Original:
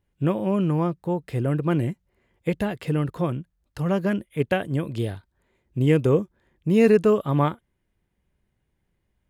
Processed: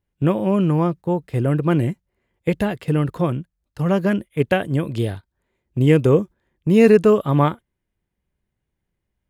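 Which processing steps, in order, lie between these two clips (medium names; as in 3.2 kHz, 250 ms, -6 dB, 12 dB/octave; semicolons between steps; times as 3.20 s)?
gate -36 dBFS, range -9 dB; trim +4.5 dB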